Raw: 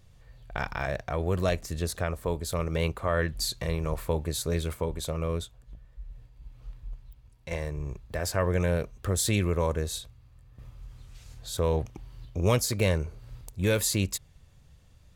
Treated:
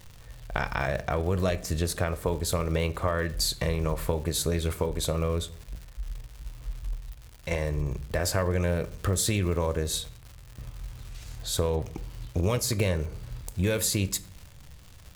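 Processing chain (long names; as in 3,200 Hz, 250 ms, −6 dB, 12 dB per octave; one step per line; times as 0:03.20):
downward compressor 6 to 1, threshold −29 dBFS, peak gain reduction 10 dB
surface crackle 230 per second −44 dBFS
on a send: convolution reverb RT60 0.55 s, pre-delay 6 ms, DRR 13 dB
on the sum: level +6 dB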